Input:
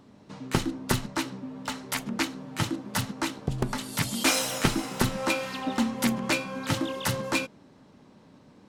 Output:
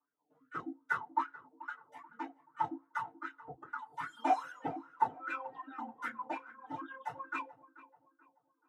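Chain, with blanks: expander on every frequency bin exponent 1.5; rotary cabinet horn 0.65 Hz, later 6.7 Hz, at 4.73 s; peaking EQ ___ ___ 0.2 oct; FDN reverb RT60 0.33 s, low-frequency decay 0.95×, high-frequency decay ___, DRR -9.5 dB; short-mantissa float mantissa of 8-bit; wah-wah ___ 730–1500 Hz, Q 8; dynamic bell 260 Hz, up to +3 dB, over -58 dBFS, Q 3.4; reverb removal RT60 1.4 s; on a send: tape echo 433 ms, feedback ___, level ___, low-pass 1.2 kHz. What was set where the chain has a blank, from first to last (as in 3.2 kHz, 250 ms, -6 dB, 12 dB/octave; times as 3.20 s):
4.5 kHz, -11.5 dB, 0.6×, 2.5 Hz, 48%, -15 dB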